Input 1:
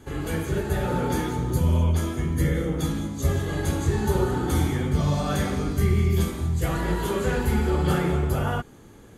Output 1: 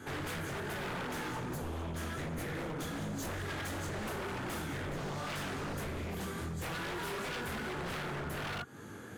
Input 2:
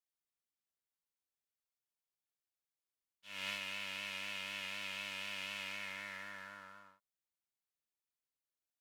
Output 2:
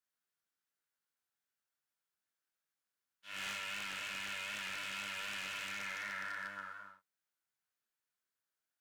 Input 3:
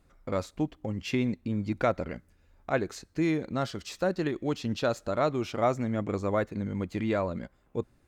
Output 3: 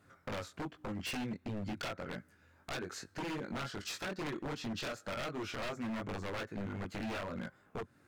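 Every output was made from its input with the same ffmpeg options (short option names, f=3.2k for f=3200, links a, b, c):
-af "highpass=f=87:w=0.5412,highpass=f=87:w=1.3066,equalizer=f=1.5k:w=2.5:g=9.5,acompressor=threshold=-34dB:ratio=4,flanger=delay=19.5:depth=3.5:speed=2.6,aeval=exprs='0.0133*(abs(mod(val(0)/0.0133+3,4)-2)-1)':c=same,volume=4dB"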